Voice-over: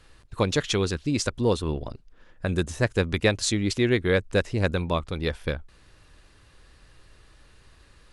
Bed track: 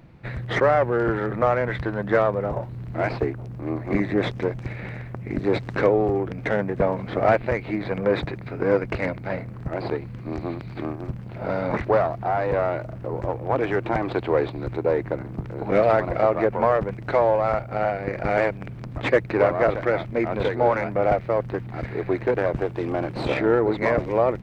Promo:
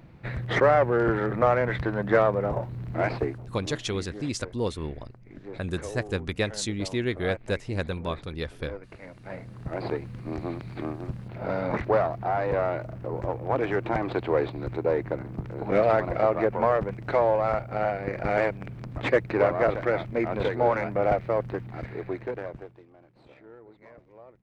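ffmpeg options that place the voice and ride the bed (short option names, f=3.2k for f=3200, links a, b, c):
-filter_complex "[0:a]adelay=3150,volume=-5.5dB[a];[1:a]volume=15dB,afade=t=out:st=2.97:d=0.92:silence=0.125893,afade=t=in:st=9.07:d=0.77:silence=0.158489,afade=t=out:st=21.41:d=1.45:silence=0.0473151[b];[a][b]amix=inputs=2:normalize=0"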